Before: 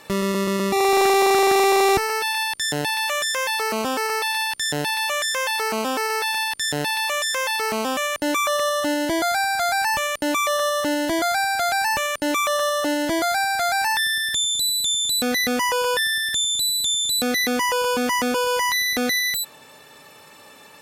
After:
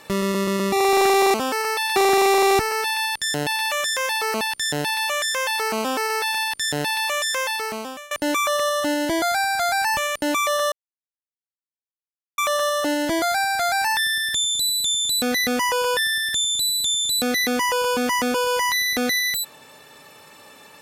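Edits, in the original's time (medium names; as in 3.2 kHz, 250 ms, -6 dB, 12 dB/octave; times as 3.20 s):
3.79–4.41 s: move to 1.34 s
7.39–8.11 s: fade out, to -22.5 dB
10.72–12.38 s: mute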